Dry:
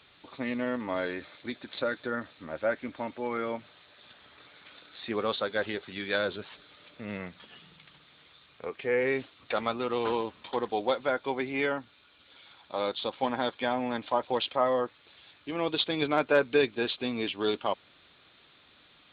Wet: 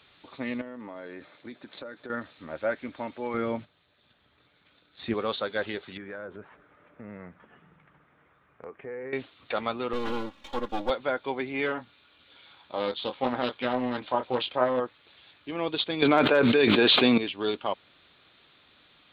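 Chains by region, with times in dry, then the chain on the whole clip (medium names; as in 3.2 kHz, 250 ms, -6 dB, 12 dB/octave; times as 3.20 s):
0.61–2.10 s: high-pass 120 Hz + treble shelf 2.5 kHz -10 dB + compression 5:1, threshold -37 dBFS
3.34–5.14 s: bass shelf 270 Hz +11.5 dB + gate -48 dBFS, range -12 dB
5.97–9.13 s: low-pass 1.8 kHz 24 dB/octave + compression 3:1, threshold -38 dBFS
9.93–10.90 s: partial rectifier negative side -12 dB + comb 3.6 ms, depth 98%
11.66–14.80 s: doubling 24 ms -8 dB + loudspeaker Doppler distortion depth 0.22 ms
16.02–17.18 s: high-pass 140 Hz + level flattener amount 100%
whole clip: none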